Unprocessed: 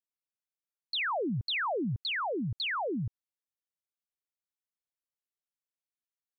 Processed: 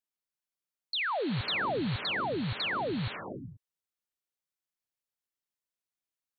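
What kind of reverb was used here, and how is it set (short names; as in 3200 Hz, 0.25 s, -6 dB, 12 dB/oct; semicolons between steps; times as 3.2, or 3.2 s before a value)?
non-linear reverb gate 0.5 s rising, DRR 8 dB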